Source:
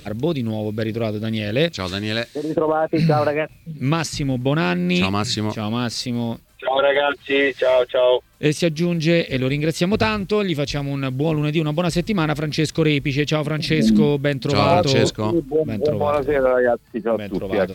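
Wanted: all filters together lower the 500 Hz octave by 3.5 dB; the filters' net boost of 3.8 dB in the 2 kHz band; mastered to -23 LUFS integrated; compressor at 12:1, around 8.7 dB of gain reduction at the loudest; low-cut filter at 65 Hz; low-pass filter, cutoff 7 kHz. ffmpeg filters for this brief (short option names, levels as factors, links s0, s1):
-af "highpass=65,lowpass=7000,equalizer=f=500:t=o:g=-4.5,equalizer=f=2000:t=o:g=5,acompressor=threshold=0.0891:ratio=12,volume=1.5"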